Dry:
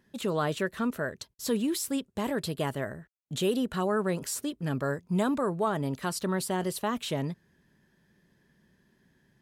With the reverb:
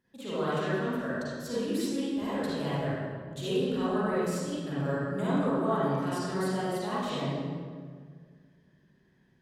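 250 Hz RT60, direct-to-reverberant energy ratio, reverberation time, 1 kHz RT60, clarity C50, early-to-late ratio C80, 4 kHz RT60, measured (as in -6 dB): 2.2 s, -11.0 dB, 1.8 s, 1.7 s, -6.5 dB, -2.0 dB, 1.2 s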